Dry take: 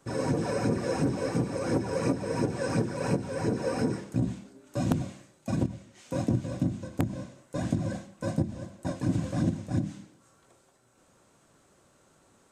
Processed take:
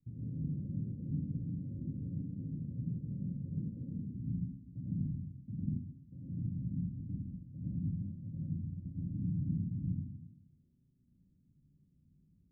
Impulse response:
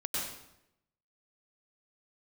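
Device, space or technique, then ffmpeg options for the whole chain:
club heard from the street: -filter_complex "[0:a]alimiter=limit=-24dB:level=0:latency=1:release=427,lowpass=frequency=190:width=0.5412,lowpass=frequency=190:width=1.3066[link_01];[1:a]atrim=start_sample=2205[link_02];[link_01][link_02]afir=irnorm=-1:irlink=0,asplit=3[link_03][link_04][link_05];[link_03]afade=type=out:start_time=5.77:duration=0.02[link_06];[link_04]tiltshelf=frequency=790:gain=-5.5,afade=type=in:start_time=5.77:duration=0.02,afade=type=out:start_time=6.36:duration=0.02[link_07];[link_05]afade=type=in:start_time=6.36:duration=0.02[link_08];[link_06][link_07][link_08]amix=inputs=3:normalize=0,volume=-3.5dB"

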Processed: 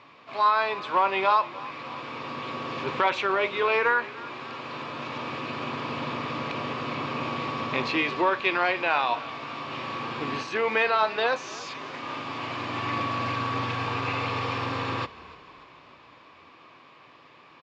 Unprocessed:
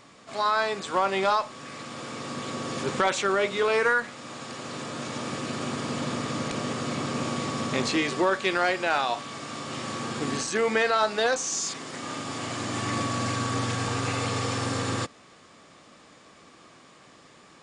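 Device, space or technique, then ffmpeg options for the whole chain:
frequency-shifting delay pedal into a guitar cabinet: -filter_complex "[0:a]asplit=6[link_01][link_02][link_03][link_04][link_05][link_06];[link_02]adelay=295,afreqshift=-37,volume=-19dB[link_07];[link_03]adelay=590,afreqshift=-74,volume=-23.4dB[link_08];[link_04]adelay=885,afreqshift=-111,volume=-27.9dB[link_09];[link_05]adelay=1180,afreqshift=-148,volume=-32.3dB[link_10];[link_06]adelay=1475,afreqshift=-185,volume=-36.7dB[link_11];[link_01][link_07][link_08][link_09][link_10][link_11]amix=inputs=6:normalize=0,highpass=85,equalizer=frequency=200:width_type=q:width=4:gain=-8,equalizer=frequency=1000:width_type=q:width=4:gain=9,equalizer=frequency=2500:width_type=q:width=4:gain=8,lowpass=frequency=4300:width=0.5412,lowpass=frequency=4300:width=1.3066,volume=-2dB"

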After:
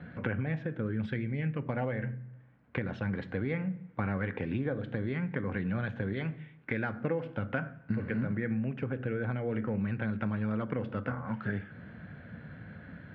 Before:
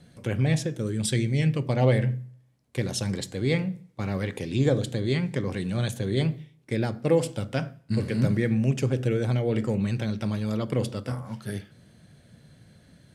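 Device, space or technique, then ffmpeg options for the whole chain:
bass amplifier: -filter_complex "[0:a]asettb=1/sr,asplit=3[link_01][link_02][link_03];[link_01]atrim=end=6.134[link_04];[link_02]atrim=start=6.13:end=7.01,asetpts=PTS-STARTPTS,afade=type=in:duration=0.004:curve=qsin,afade=type=out:start_time=0.876:duration=0.004:curve=qsin,tiltshelf=frequency=1100:gain=-4[link_05];[link_03]atrim=start=7.006[link_06];[link_04][link_05]acrossfade=duration=0.004:curve1=hsin:curve2=qsin[link_07];[link_07][link_06]acrossfade=duration=0.004:curve1=qsin:curve2=hsin,acompressor=threshold=-38dB:ratio=5,highpass=64,equalizer=frequency=130:width_type=q:width=4:gain=-6,equalizer=frequency=370:width_type=q:width=4:gain=-6,equalizer=frequency=610:width_type=q:width=4:gain=-3,equalizer=frequency=1500:width_type=q:width=4:gain=8,lowpass=frequency=2300:width=0.5412,lowpass=frequency=2300:width=1.3066,volume=9dB"

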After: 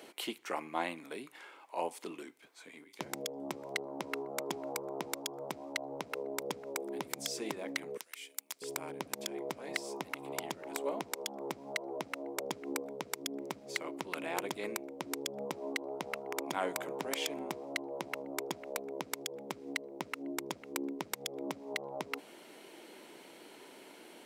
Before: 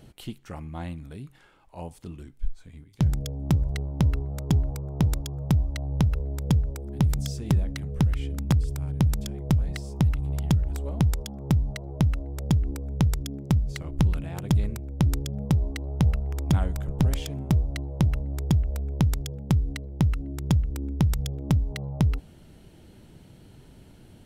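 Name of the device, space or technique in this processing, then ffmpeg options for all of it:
laptop speaker: -filter_complex "[0:a]asettb=1/sr,asplit=3[link_01][link_02][link_03];[link_01]atrim=end=7.974[link_04];[link_02]atrim=start=7.97:end=8.62,asetpts=PTS-STARTPTS,afade=type=in:duration=0.004:curve=qsin,afade=type=out:start_time=0.646:duration=0.004:curve=qsin,aderivative[link_05];[link_03]atrim=start=8.616[link_06];[link_04][link_05]acrossfade=duration=0.004:curve1=hsin:curve2=qsin[link_07];[link_07][link_06]acrossfade=duration=0.004:curve1=qsin:curve2=hsin,highpass=frequency=330:width=0.5412,highpass=frequency=330:width=1.3066,equalizer=frequency=1000:width_type=o:width=0.28:gain=5,equalizer=frequency=2200:width_type=o:width=0.4:gain=6,alimiter=limit=-23.5dB:level=0:latency=1:release=160,volume=4.5dB"

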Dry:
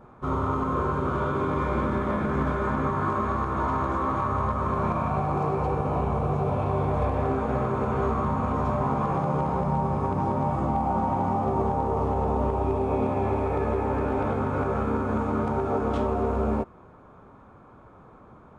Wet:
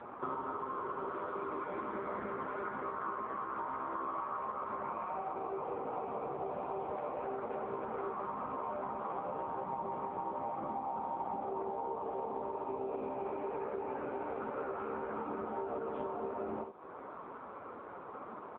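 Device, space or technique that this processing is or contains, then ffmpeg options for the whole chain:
voicemail: -filter_complex "[0:a]asettb=1/sr,asplit=3[link_01][link_02][link_03];[link_01]atrim=end=14.714[link_04];[link_02]atrim=start=14.71:end=15.19,asetpts=PTS-STARTPTS,afade=type=in:duration=0.004:curve=qsin,afade=type=out:start_time=0.476:duration=0.004:curve=qsin,adynamicequalizer=threshold=0.00708:dfrequency=140:dqfactor=1.2:tfrequency=140:tqfactor=1.2:attack=5:release=100:ratio=0.375:range=3:mode=cutabove:tftype=bell[link_05];[link_03]atrim=start=15.186[link_06];[link_04][link_05]acrossfade=duration=0.004:curve1=hsin:curve2=qsin[link_07];[link_07][link_06]acrossfade=duration=0.004:curve1=qsin:curve2=hsin,highpass=330,lowpass=3000,aecho=1:1:51|77:0.299|0.237,acompressor=threshold=-43dB:ratio=8,volume=8dB" -ar 8000 -c:a libopencore_amrnb -b:a 5900

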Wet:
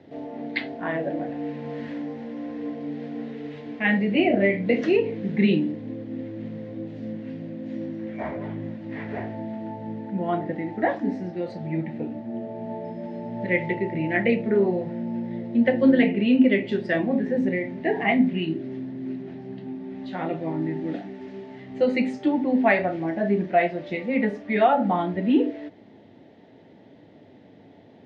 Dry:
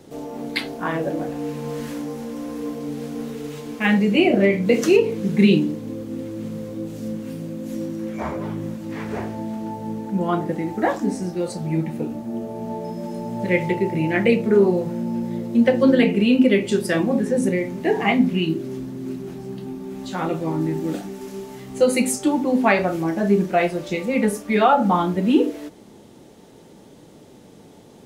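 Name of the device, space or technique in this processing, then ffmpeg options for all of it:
guitar cabinet: -af "highpass=92,equalizer=frequency=100:width_type=q:width=4:gain=9,equalizer=frequency=270:width_type=q:width=4:gain=6,equalizer=frequency=660:width_type=q:width=4:gain=8,equalizer=frequency=1200:width_type=q:width=4:gain=-6,equalizer=frequency=1900:width_type=q:width=4:gain=9,lowpass=frequency=3900:width=0.5412,lowpass=frequency=3900:width=1.3066,volume=-6.5dB"

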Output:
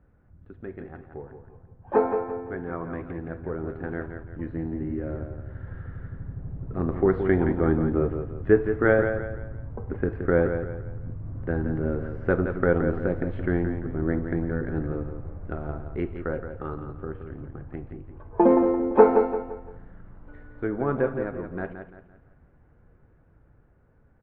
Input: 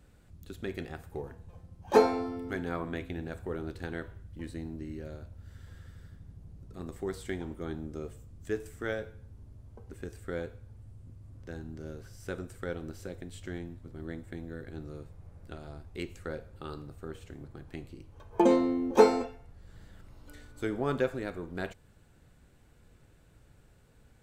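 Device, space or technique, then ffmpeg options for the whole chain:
action camera in a waterproof case: -af "lowpass=frequency=1700:width=0.5412,lowpass=frequency=1700:width=1.3066,aecho=1:1:171|342|513|684:0.398|0.147|0.0545|0.0202,dynaudnorm=framelen=740:gausssize=9:maxgain=16.5dB,volume=-1dB" -ar 32000 -c:a aac -b:a 48k

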